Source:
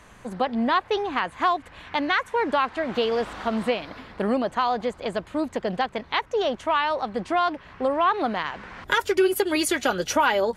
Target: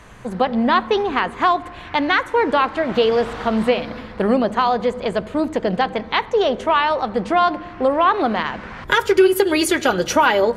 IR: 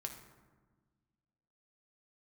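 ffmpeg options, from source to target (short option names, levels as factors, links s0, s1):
-filter_complex "[0:a]asplit=2[s0][s1];[s1]equalizer=f=500:t=o:w=0.22:g=7.5[s2];[1:a]atrim=start_sample=2205,lowpass=6400,lowshelf=f=230:g=10.5[s3];[s2][s3]afir=irnorm=-1:irlink=0,volume=0.422[s4];[s0][s4]amix=inputs=2:normalize=0,volume=1.5"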